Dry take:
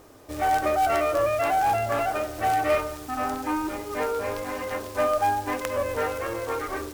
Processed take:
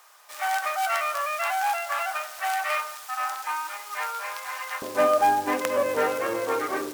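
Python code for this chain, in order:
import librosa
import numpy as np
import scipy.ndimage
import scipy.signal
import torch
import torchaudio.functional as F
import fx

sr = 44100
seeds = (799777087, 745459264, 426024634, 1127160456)

y = fx.highpass(x, sr, hz=fx.steps((0.0, 930.0), (4.82, 150.0)), slope=24)
y = F.gain(torch.from_numpy(y), 3.0).numpy()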